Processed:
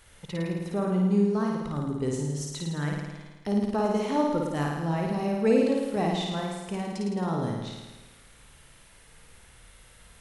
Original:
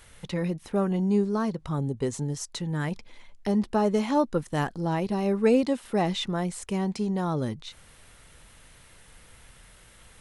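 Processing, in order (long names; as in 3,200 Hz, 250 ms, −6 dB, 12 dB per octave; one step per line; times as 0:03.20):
0:05.96–0:06.64: downward expander −28 dBFS
flutter between parallel walls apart 9.3 metres, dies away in 1.2 s
level −4 dB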